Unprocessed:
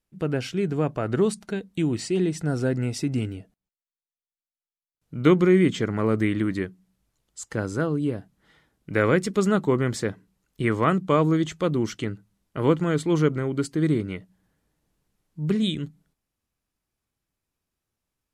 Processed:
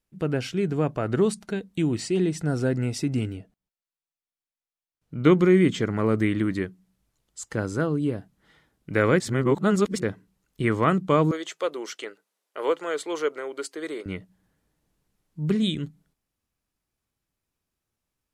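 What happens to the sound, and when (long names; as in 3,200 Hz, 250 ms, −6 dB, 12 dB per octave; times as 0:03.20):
0:03.37–0:05.32: high-shelf EQ 6,000 Hz −6 dB
0:09.20–0:10.02: reverse
0:11.31–0:14.06: Chebyshev high-pass filter 460 Hz, order 3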